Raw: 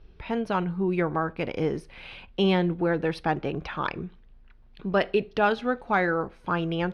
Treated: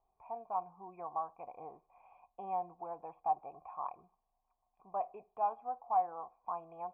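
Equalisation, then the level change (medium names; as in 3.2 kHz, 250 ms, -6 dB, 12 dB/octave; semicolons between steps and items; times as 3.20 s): cascade formant filter a; rippled Chebyshev low-pass 3.4 kHz, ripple 9 dB; +2.5 dB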